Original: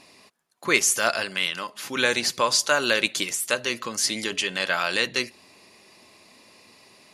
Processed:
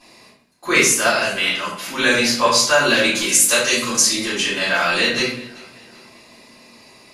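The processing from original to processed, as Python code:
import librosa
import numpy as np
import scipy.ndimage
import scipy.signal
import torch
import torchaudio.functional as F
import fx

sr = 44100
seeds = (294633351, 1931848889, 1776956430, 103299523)

p1 = fx.peak_eq(x, sr, hz=7800.0, db=11.0, octaves=1.8, at=(3.25, 4.01))
p2 = p1 + fx.echo_feedback(p1, sr, ms=386, feedback_pct=43, wet_db=-22.0, dry=0)
p3 = fx.room_shoebox(p2, sr, seeds[0], volume_m3=100.0, walls='mixed', distance_m=3.7)
y = p3 * librosa.db_to_amplitude(-6.5)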